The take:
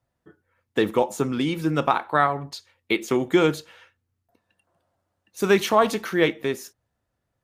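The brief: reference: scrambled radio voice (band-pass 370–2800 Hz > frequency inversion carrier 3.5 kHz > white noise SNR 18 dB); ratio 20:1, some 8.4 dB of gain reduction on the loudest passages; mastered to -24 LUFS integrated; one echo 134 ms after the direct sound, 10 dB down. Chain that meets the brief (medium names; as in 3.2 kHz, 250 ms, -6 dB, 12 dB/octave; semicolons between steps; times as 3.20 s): compression 20:1, threshold -21 dBFS; band-pass 370–2800 Hz; delay 134 ms -10 dB; frequency inversion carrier 3.5 kHz; white noise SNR 18 dB; trim +3.5 dB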